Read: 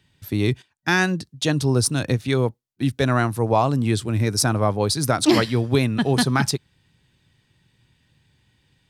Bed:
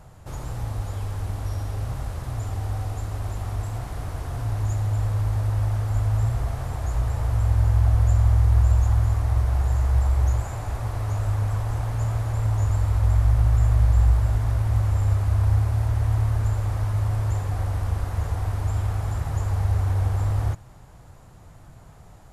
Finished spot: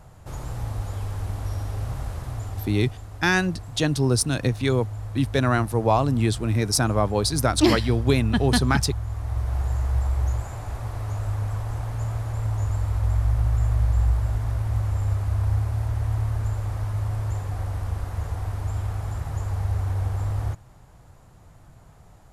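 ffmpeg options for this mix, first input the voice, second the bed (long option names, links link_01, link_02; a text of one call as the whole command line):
ffmpeg -i stem1.wav -i stem2.wav -filter_complex "[0:a]adelay=2350,volume=-1.5dB[link_01];[1:a]volume=6dB,afade=type=out:start_time=2.14:duration=0.84:silence=0.354813,afade=type=in:start_time=9.06:duration=0.53:silence=0.473151[link_02];[link_01][link_02]amix=inputs=2:normalize=0" out.wav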